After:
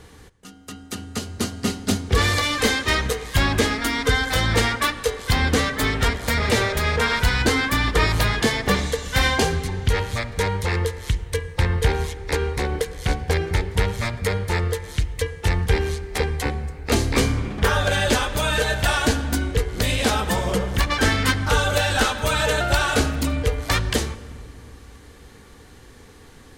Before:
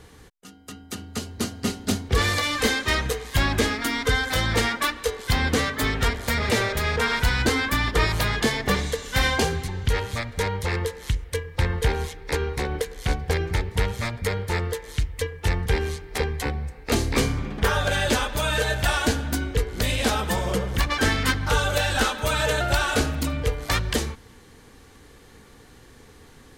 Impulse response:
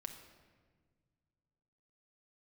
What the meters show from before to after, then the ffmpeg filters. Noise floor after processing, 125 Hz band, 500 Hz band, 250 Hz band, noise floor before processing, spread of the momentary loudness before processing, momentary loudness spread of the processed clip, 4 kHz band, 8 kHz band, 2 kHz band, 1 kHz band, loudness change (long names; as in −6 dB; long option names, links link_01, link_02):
−46 dBFS, +3.0 dB, +2.5 dB, +2.5 dB, −50 dBFS, 7 LU, 7 LU, +2.5 dB, +2.5 dB, +2.5 dB, +2.5 dB, +2.5 dB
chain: -filter_complex "[0:a]asplit=2[link_01][link_02];[1:a]atrim=start_sample=2205,asetrate=22050,aresample=44100[link_03];[link_02][link_03]afir=irnorm=-1:irlink=0,volume=-9dB[link_04];[link_01][link_04]amix=inputs=2:normalize=0"